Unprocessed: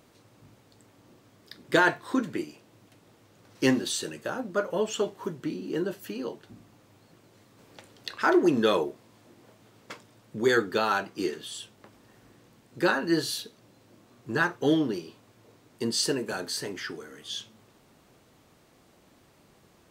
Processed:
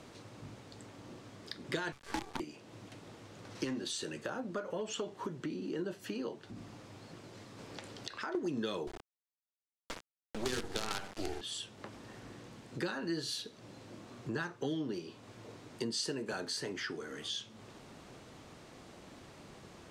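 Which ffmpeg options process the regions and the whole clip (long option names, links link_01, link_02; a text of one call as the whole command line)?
ffmpeg -i in.wav -filter_complex "[0:a]asettb=1/sr,asplit=3[link_01][link_02][link_03];[link_01]atrim=end=1.924[link_04];[link_02]atrim=start=1.92:end=2.4,asetpts=PTS-STARTPTS,afade=type=in:duration=0.004:curve=qsin,afade=type=out:start_time=0.476:duration=0.004:curve=qsin,aeval=exprs='val(0)*sin(2*PI*580*n/s)':channel_layout=same,bandreject=frequency=2700:width=5.9,acrusher=bits=5:dc=4:mix=0:aa=0.000001[link_05];[link_03]atrim=start=2.396[link_06];[link_04][link_05]acrossfade=duration=0.004:curve1=hsin:curve2=qsin[link_07];[link_07][link_06]acrossfade=duration=0.004:curve1=qsin:curve2=hsin,asettb=1/sr,asplit=3[link_08][link_09][link_10];[link_08]atrim=end=3.644[link_11];[link_09]atrim=start=3.64:end=5.79,asetpts=PTS-STARTPTS,afade=type=in:duration=0.004:curve=qsin,afade=type=out:start_time=2.146:duration=0.004:curve=qsin,acompressor=threshold=-34dB:ratio=1.5:attack=3.2:release=140:knee=1:detection=peak,asoftclip=type=hard:threshold=-23dB[link_12];[link_10]atrim=start=5.786[link_13];[link_11][link_12]acrossfade=duration=0.004:curve1=hsin:curve2=qsin[link_14];[link_14][link_13]acrossfade=duration=0.004:curve1=qsin:curve2=hsin,asettb=1/sr,asplit=3[link_15][link_16][link_17];[link_15]atrim=end=6.404[link_18];[link_16]atrim=start=6.4:end=8.35,asetpts=PTS-STARTPTS,afade=type=in:duration=0.004:curve=qsin,afade=type=out:start_time=1.946:duration=0.004:curve=qsin,equalizer=frequency=5000:width_type=o:width=0.21:gain=2.5,acompressor=threshold=-47dB:ratio=2:attack=3.2:release=140:knee=1:detection=peak[link_19];[link_17]atrim=start=8.346[link_20];[link_18][link_19]acrossfade=duration=0.004:curve1=hsin:curve2=qsin[link_21];[link_21][link_20]acrossfade=duration=0.004:curve1=qsin:curve2=hsin,asettb=1/sr,asplit=3[link_22][link_23][link_24];[link_22]atrim=end=8.874[link_25];[link_23]atrim=start=8.87:end=11.41,asetpts=PTS-STARTPTS,afade=type=in:duration=0.004:curve=qsin,afade=type=out:start_time=2.536:duration=0.004:curve=qsin,highpass=frequency=150:width=0.5412,highpass=frequency=150:width=1.3066,asplit=2[link_26][link_27];[link_27]adelay=63,lowpass=frequency=1000:poles=1,volume=-5dB,asplit=2[link_28][link_29];[link_29]adelay=63,lowpass=frequency=1000:poles=1,volume=0.43,asplit=2[link_30][link_31];[link_31]adelay=63,lowpass=frequency=1000:poles=1,volume=0.43,asplit=2[link_32][link_33];[link_33]adelay=63,lowpass=frequency=1000:poles=1,volume=0.43,asplit=2[link_34][link_35];[link_35]adelay=63,lowpass=frequency=1000:poles=1,volume=0.43[link_36];[link_26][link_28][link_30][link_32][link_34][link_36]amix=inputs=6:normalize=0,atrim=end_sample=112014,acrusher=bits=4:dc=4:mix=0:aa=0.000001[link_37];[link_24]atrim=start=11.406[link_38];[link_25][link_37]acrossfade=duration=0.004:curve1=hsin:curve2=qsin[link_39];[link_39][link_38]acrossfade=duration=0.004:curve1=qsin:curve2=hsin,acrossover=split=260|3000[link_40][link_41][link_42];[link_41]acompressor=threshold=-28dB:ratio=6[link_43];[link_40][link_43][link_42]amix=inputs=3:normalize=0,lowpass=8100,acompressor=threshold=-48dB:ratio=2.5,volume=6.5dB" out.wav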